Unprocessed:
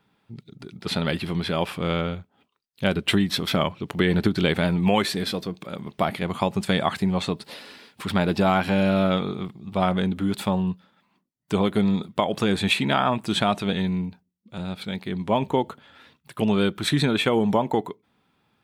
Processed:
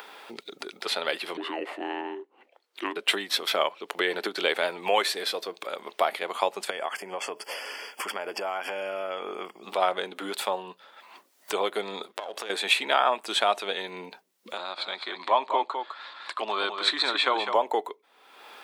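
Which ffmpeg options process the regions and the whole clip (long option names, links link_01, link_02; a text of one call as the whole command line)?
ffmpeg -i in.wav -filter_complex "[0:a]asettb=1/sr,asplit=3[link_01][link_02][link_03];[link_01]atrim=end=1.374[link_04];[link_02]atrim=start=1.37:end=2.96,asetpts=PTS-STARTPTS,afade=type=in:duration=0.004:curve=qsin,afade=type=out:start_time=1.586:duration=0.004:curve=qsin,lowpass=frequency=1300:poles=1,afreqshift=-480[link_05];[link_03]atrim=start=2.956[link_06];[link_04][link_05]acrossfade=duration=0.004:curve1=hsin:curve2=qsin[link_07];[link_07][link_06]acrossfade=duration=0.004:curve1=qsin:curve2=hsin,asettb=1/sr,asplit=3[link_08][link_09][link_10];[link_08]atrim=end=6.704[link_11];[link_09]atrim=start=6.7:end=9.63,asetpts=PTS-STARTPTS,afade=type=in:duration=0.004:curve=qsin,afade=type=out:start_time=2.926:duration=0.004:curve=qsin,acompressor=threshold=-25dB:ratio=6:attack=3.2:release=140:knee=1:detection=peak,asuperstop=centerf=3900:order=12:qfactor=3.4[link_12];[link_10]atrim=start=9.626[link_13];[link_11][link_12]acrossfade=duration=0.004:curve1=hsin:curve2=qsin[link_14];[link_14][link_13]acrossfade=duration=0.004:curve1=qsin:curve2=hsin,asettb=1/sr,asplit=3[link_15][link_16][link_17];[link_15]atrim=end=12.074[link_18];[link_16]atrim=start=12.07:end=12.5,asetpts=PTS-STARTPTS,afade=type=in:duration=0.004:curve=qsin,afade=type=out:start_time=0.426:duration=0.004:curve=qsin,aeval=exprs='if(lt(val(0),0),0.447*val(0),val(0))':channel_layout=same,acompressor=threshold=-34dB:ratio=5:attack=3.2:release=140:knee=1:detection=peak[link_19];[link_17]atrim=start=12.496[link_20];[link_18][link_19]acrossfade=duration=0.004:curve1=hsin:curve2=qsin[link_21];[link_21][link_20]acrossfade=duration=0.004:curve1=qsin:curve2=hsin,asettb=1/sr,asplit=3[link_22][link_23][link_24];[link_22]atrim=end=14.574[link_25];[link_23]atrim=start=14.57:end=17.55,asetpts=PTS-STARTPTS,afade=type=in:duration=0.004:curve=qsin,afade=type=out:start_time=2.976:duration=0.004:curve=qsin,highpass=250,equalizer=frequency=460:width_type=q:width=4:gain=-10,equalizer=frequency=1100:width_type=q:width=4:gain=9,equalizer=frequency=2800:width_type=q:width=4:gain=-4,equalizer=frequency=4200:width_type=q:width=4:gain=7,equalizer=frequency=6000:width_type=q:width=4:gain=-8,lowpass=frequency=7100:width=0.5412,lowpass=frequency=7100:width=1.3066,aecho=1:1:206:0.422,atrim=end_sample=131418[link_26];[link_24]atrim=start=17.546[link_27];[link_25][link_26]acrossfade=duration=0.004:curve1=hsin:curve2=qsin[link_28];[link_28][link_27]acrossfade=duration=0.004:curve1=qsin:curve2=hsin,highpass=frequency=440:width=0.5412,highpass=frequency=440:width=1.3066,acompressor=mode=upward:threshold=-27dB:ratio=2.5" out.wav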